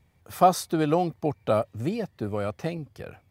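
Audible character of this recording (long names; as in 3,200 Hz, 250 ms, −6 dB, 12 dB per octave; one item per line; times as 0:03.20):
background noise floor −64 dBFS
spectral slope −6.0 dB per octave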